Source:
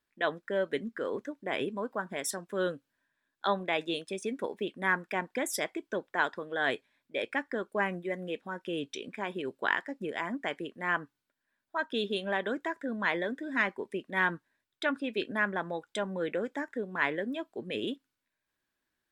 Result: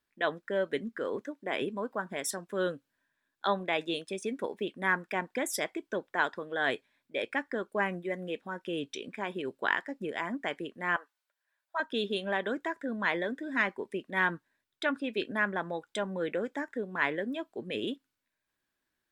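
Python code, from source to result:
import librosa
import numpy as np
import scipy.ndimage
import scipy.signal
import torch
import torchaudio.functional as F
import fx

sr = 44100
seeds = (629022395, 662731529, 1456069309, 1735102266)

y = fx.highpass(x, sr, hz=180.0, slope=12, at=(1.21, 1.62))
y = fx.highpass(y, sr, hz=540.0, slope=24, at=(10.96, 11.8))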